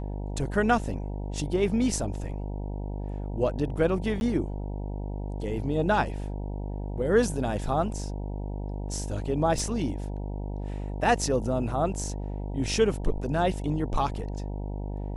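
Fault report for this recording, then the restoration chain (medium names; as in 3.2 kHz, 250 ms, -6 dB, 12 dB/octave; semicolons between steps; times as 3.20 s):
buzz 50 Hz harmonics 19 -33 dBFS
4.20–4.21 s: dropout 11 ms
9.59 s: dropout 2.4 ms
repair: de-hum 50 Hz, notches 19; interpolate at 4.20 s, 11 ms; interpolate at 9.59 s, 2.4 ms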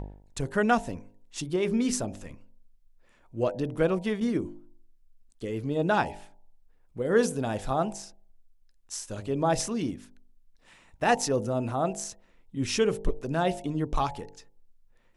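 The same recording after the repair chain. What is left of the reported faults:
nothing left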